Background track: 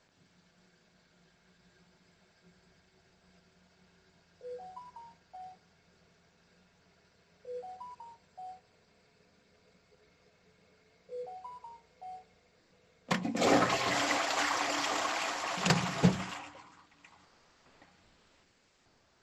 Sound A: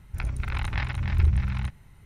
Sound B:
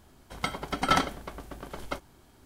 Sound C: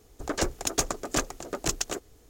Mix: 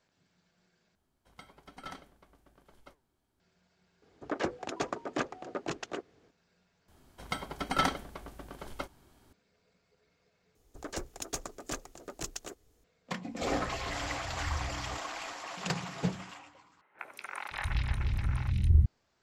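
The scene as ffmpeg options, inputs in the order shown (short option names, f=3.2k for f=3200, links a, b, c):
-filter_complex "[2:a]asplit=2[a][b];[3:a]asplit=2[c][d];[1:a]asplit=2[e][f];[0:a]volume=-6.5dB[g];[a]flanger=delay=4.3:depth=6.5:regen=90:speed=1.1:shape=sinusoidal[h];[c]highpass=150,lowpass=2.7k[i];[f]acrossover=split=410|2400[j][k][l];[l]adelay=180[m];[j]adelay=700[n];[n][k][m]amix=inputs=3:normalize=0[o];[g]asplit=5[p][q][r][s][t];[p]atrim=end=0.954[u];[h]atrim=end=2.45,asetpts=PTS-STARTPTS,volume=-16.5dB[v];[q]atrim=start=3.396:end=6.884[w];[b]atrim=end=2.45,asetpts=PTS-STARTPTS,volume=-4.5dB[x];[r]atrim=start=9.326:end=10.554[y];[d]atrim=end=2.29,asetpts=PTS-STARTPTS,volume=-11dB[z];[s]atrim=start=12.836:end=16.814[aa];[o]atrim=end=2.05,asetpts=PTS-STARTPTS,volume=-1.5dB[ab];[t]atrim=start=18.856[ac];[i]atrim=end=2.29,asetpts=PTS-STARTPTS,volume=-3dB,afade=t=in:d=0.004:c=hsin,afade=t=out:st=2.286:d=0.004:c=hsin,adelay=4020[ad];[e]atrim=end=2.05,asetpts=PTS-STARTPTS,volume=-15dB,afade=t=in:d=0.004:c=hsin,afade=t=out:st=2.046:d=0.004:c=hsin,adelay=13280[ae];[u][v]acrossfade=d=0.004:c1=hsin:c2=hsin[af];[af][w]acrossfade=d=0.004:c1=hsin:c2=hsin[ag];[ag][x]acrossfade=d=0.004:c1=hsin:c2=hsin[ah];[ah][y]acrossfade=d=0.004:c1=hsin:c2=hsin[ai];[ai][z]acrossfade=d=0.004:c1=hsin:c2=hsin[aj];[aj][aa]acrossfade=d=0.004:c1=hsin:c2=hsin[ak];[ak][ab]acrossfade=d=0.004:c1=hsin:c2=hsin[al];[al][ac]acrossfade=d=0.004:c1=hsin:c2=hsin[am];[am][ad][ae]amix=inputs=3:normalize=0"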